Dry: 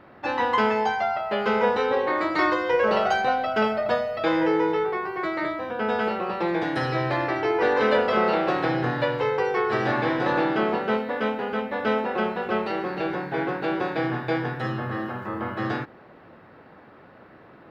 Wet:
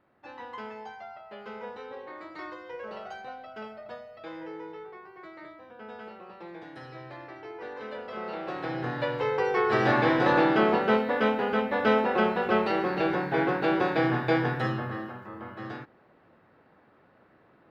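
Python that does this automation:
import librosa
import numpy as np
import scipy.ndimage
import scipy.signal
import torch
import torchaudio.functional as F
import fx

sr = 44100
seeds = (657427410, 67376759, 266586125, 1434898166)

y = fx.gain(x, sr, db=fx.line((7.95, -18.5), (8.84, -7.0), (9.88, 1.0), (14.59, 1.0), (15.28, -11.0)))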